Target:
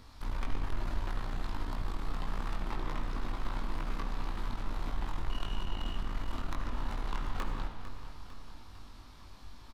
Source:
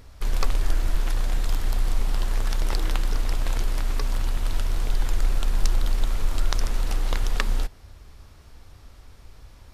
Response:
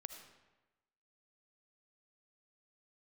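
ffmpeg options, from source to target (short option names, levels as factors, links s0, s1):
-filter_complex "[0:a]equalizer=f=250:t=o:w=1:g=9,equalizer=f=500:t=o:w=1:g=-4,equalizer=f=1000:t=o:w=1:g=9,equalizer=f=4000:t=o:w=1:g=8,acrossover=split=550|2400[s0][s1][s2];[s2]acompressor=threshold=0.00398:ratio=6[s3];[s0][s1][s3]amix=inputs=3:normalize=0,asettb=1/sr,asplit=3[s4][s5][s6];[s4]atrim=end=5.304[s7];[s5]atrim=start=5.3:end=5.96,asetpts=PTS-STARTPTS,afade=t=in:d=0.004:c=qsin,afade=t=out:st=0.656:d=0.004:c=qsin,aeval=exprs='val(0)+0.0158*sin(2*PI*2900*n/s)':c=same[s8];[s6]atrim=start=5.956[s9];[s7][s8]acrossfade=d=0.004:c1=hsin:c2=qsin[s10];[s10][s9]acrossfade=d=0.004:c1=qsin:c2=hsin,asoftclip=type=hard:threshold=0.0794,asplit=2[s11][s12];[s12]adelay=21,volume=0.631[s13];[s11][s13]amix=inputs=2:normalize=0,aecho=1:1:451|902|1353|1804|2255|2706:0.251|0.133|0.0706|0.0374|0.0198|0.0105[s14];[1:a]atrim=start_sample=2205,asetrate=42777,aresample=44100[s15];[s14][s15]afir=irnorm=-1:irlink=0,volume=0.631"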